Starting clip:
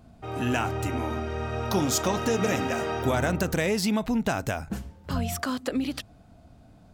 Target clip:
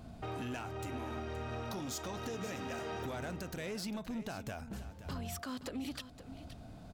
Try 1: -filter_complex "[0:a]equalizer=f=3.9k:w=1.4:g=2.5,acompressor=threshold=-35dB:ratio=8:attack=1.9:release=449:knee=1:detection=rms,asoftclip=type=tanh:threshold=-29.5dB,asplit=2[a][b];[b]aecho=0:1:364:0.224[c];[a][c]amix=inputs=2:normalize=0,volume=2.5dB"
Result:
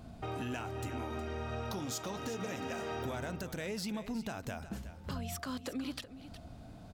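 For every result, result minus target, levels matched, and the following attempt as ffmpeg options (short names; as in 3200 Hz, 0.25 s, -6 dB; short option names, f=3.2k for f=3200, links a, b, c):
soft clip: distortion -10 dB; echo 0.158 s early
-filter_complex "[0:a]equalizer=f=3.9k:w=1.4:g=2.5,acompressor=threshold=-35dB:ratio=8:attack=1.9:release=449:knee=1:detection=rms,asoftclip=type=tanh:threshold=-36.5dB,asplit=2[a][b];[b]aecho=0:1:364:0.224[c];[a][c]amix=inputs=2:normalize=0,volume=2.5dB"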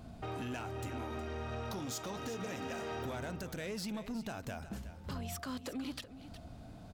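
echo 0.158 s early
-filter_complex "[0:a]equalizer=f=3.9k:w=1.4:g=2.5,acompressor=threshold=-35dB:ratio=8:attack=1.9:release=449:knee=1:detection=rms,asoftclip=type=tanh:threshold=-36.5dB,asplit=2[a][b];[b]aecho=0:1:522:0.224[c];[a][c]amix=inputs=2:normalize=0,volume=2.5dB"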